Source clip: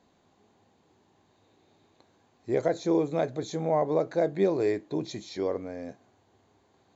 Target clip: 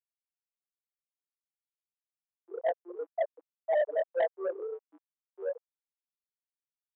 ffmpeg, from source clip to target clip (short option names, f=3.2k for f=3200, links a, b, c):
-filter_complex "[0:a]afftfilt=real='re':imag='-im':win_size=2048:overlap=0.75,highshelf=f=2.3k:g=-9.5,asplit=2[a][b];[b]adelay=100,lowpass=f=2.8k:p=1,volume=-11dB,asplit=2[c][d];[d]adelay=100,lowpass=f=2.8k:p=1,volume=0.37,asplit=2[e][f];[f]adelay=100,lowpass=f=2.8k:p=1,volume=0.37,asplit=2[g][h];[h]adelay=100,lowpass=f=2.8k:p=1,volume=0.37[i];[a][c][e][g][i]amix=inputs=5:normalize=0,afftfilt=real='re*gte(hypot(re,im),0.2)':imag='im*gte(hypot(re,im),0.2)':win_size=1024:overlap=0.75,acontrast=64,highpass=f=860:w=0.5412,highpass=f=860:w=1.3066,aresample=8000,asoftclip=type=tanh:threshold=-36.5dB,aresample=44100,equalizer=f=1.1k:w=0.64:g=10,volume=8.5dB"